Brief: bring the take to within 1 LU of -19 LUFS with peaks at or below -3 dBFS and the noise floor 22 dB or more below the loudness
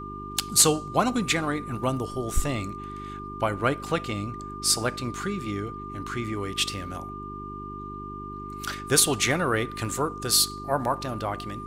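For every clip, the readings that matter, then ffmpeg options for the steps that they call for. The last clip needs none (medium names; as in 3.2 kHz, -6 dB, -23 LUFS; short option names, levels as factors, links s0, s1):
hum 50 Hz; highest harmonic 400 Hz; hum level -37 dBFS; steady tone 1.2 kHz; tone level -37 dBFS; loudness -26.0 LUFS; peak level -8.5 dBFS; loudness target -19.0 LUFS
-> -af "bandreject=f=50:t=h:w=4,bandreject=f=100:t=h:w=4,bandreject=f=150:t=h:w=4,bandreject=f=200:t=h:w=4,bandreject=f=250:t=h:w=4,bandreject=f=300:t=h:w=4,bandreject=f=350:t=h:w=4,bandreject=f=400:t=h:w=4"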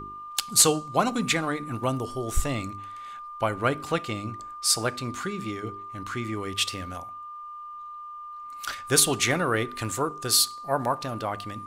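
hum not found; steady tone 1.2 kHz; tone level -37 dBFS
-> -af "bandreject=f=1200:w=30"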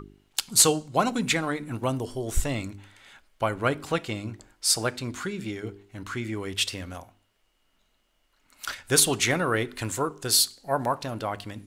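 steady tone not found; loudness -26.0 LUFS; peak level -9.0 dBFS; loudness target -19.0 LUFS
-> -af "volume=2.24,alimiter=limit=0.708:level=0:latency=1"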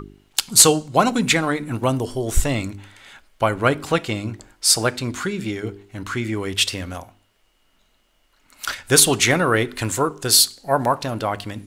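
loudness -19.0 LUFS; peak level -3.0 dBFS; noise floor -63 dBFS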